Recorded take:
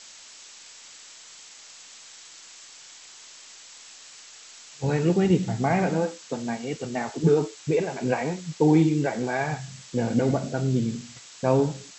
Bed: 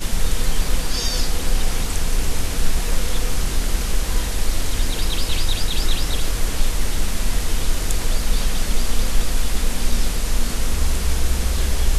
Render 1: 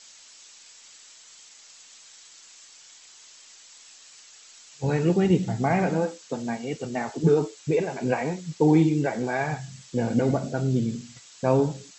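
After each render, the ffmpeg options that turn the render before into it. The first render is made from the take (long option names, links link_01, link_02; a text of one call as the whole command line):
ffmpeg -i in.wav -af "afftdn=noise_reduction=6:noise_floor=-47" out.wav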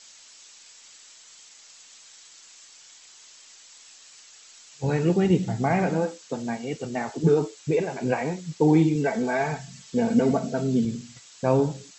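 ffmpeg -i in.wav -filter_complex "[0:a]asettb=1/sr,asplit=3[link_01][link_02][link_03];[link_01]atrim=end=8.954[link_04];[link_02]atrim=start=8.95:end=10.85,asetpts=PTS-STARTPTS,afade=type=in:duration=0.004:curve=qsin,afade=type=out:start_time=1.896:duration=0.004:curve=qsin,aecho=1:1:4.5:0.65,atrim=end_sample=83790[link_05];[link_03]atrim=start=10.846[link_06];[link_04][link_05]acrossfade=duration=0.004:curve1=hsin:curve2=qsin[link_07];[link_07][link_06]acrossfade=duration=0.004:curve1=qsin:curve2=hsin" out.wav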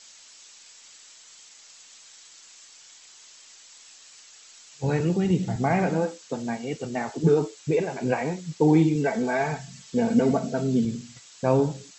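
ffmpeg -i in.wav -filter_complex "[0:a]asettb=1/sr,asplit=3[link_01][link_02][link_03];[link_01]atrim=end=5.004[link_04];[link_02]atrim=start=5:end=5.56,asetpts=PTS-STARTPTS,afade=type=in:duration=0.004:curve=qsin,afade=type=out:start_time=0.556:duration=0.004:curve=qsin,acrossover=split=240|3000[link_05][link_06][link_07];[link_06]acompressor=threshold=-26dB:ratio=6:attack=3.2:release=140:knee=2.83:detection=peak[link_08];[link_05][link_08][link_07]amix=inputs=3:normalize=0[link_09];[link_03]atrim=start=5.556[link_10];[link_04][link_09]acrossfade=duration=0.004:curve1=hsin:curve2=qsin[link_11];[link_11][link_10]acrossfade=duration=0.004:curve1=qsin:curve2=hsin" out.wav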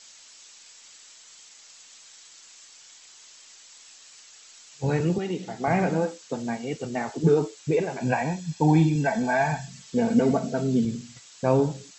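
ffmpeg -i in.wav -filter_complex "[0:a]asettb=1/sr,asplit=3[link_01][link_02][link_03];[link_01]atrim=end=5.184[link_04];[link_02]atrim=start=5.18:end=5.68,asetpts=PTS-STARTPTS,afade=type=in:duration=0.004:curve=qsin,afade=type=out:start_time=0.496:duration=0.004:curve=qsin,highpass=340,lowpass=7000[link_05];[link_03]atrim=start=5.676[link_06];[link_04][link_05]acrossfade=duration=0.004:curve1=hsin:curve2=qsin[link_07];[link_07][link_06]acrossfade=duration=0.004:curve1=qsin:curve2=hsin,asettb=1/sr,asplit=3[link_08][link_09][link_10];[link_08]atrim=end=8.004[link_11];[link_09]atrim=start=8:end=9.68,asetpts=PTS-STARTPTS,afade=type=in:duration=0.004:curve=qsin,afade=type=out:start_time=1.676:duration=0.004:curve=qsin,aecho=1:1:1.2:0.65,atrim=end_sample=74088[link_12];[link_10]atrim=start=9.676[link_13];[link_11][link_12]acrossfade=duration=0.004:curve1=hsin:curve2=qsin[link_14];[link_14][link_13]acrossfade=duration=0.004:curve1=qsin:curve2=hsin" out.wav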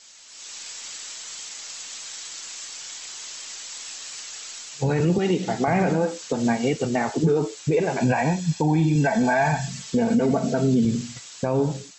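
ffmpeg -i in.wav -af "dynaudnorm=framelen=280:gausssize=3:maxgain=13dB,alimiter=limit=-12.5dB:level=0:latency=1:release=136" out.wav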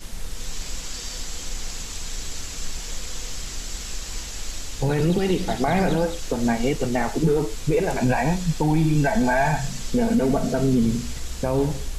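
ffmpeg -i in.wav -i bed.wav -filter_complex "[1:a]volume=-13dB[link_01];[0:a][link_01]amix=inputs=2:normalize=0" out.wav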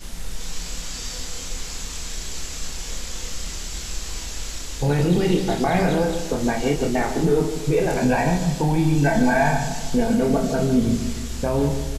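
ffmpeg -i in.wav -filter_complex "[0:a]asplit=2[link_01][link_02];[link_02]adelay=28,volume=-5dB[link_03];[link_01][link_03]amix=inputs=2:normalize=0,asplit=2[link_04][link_05];[link_05]adelay=154,lowpass=frequency=2000:poles=1,volume=-9.5dB,asplit=2[link_06][link_07];[link_07]adelay=154,lowpass=frequency=2000:poles=1,volume=0.53,asplit=2[link_08][link_09];[link_09]adelay=154,lowpass=frequency=2000:poles=1,volume=0.53,asplit=2[link_10][link_11];[link_11]adelay=154,lowpass=frequency=2000:poles=1,volume=0.53,asplit=2[link_12][link_13];[link_13]adelay=154,lowpass=frequency=2000:poles=1,volume=0.53,asplit=2[link_14][link_15];[link_15]adelay=154,lowpass=frequency=2000:poles=1,volume=0.53[link_16];[link_06][link_08][link_10][link_12][link_14][link_16]amix=inputs=6:normalize=0[link_17];[link_04][link_17]amix=inputs=2:normalize=0" out.wav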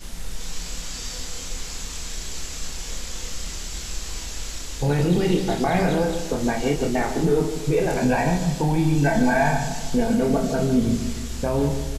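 ffmpeg -i in.wav -af "volume=-1dB" out.wav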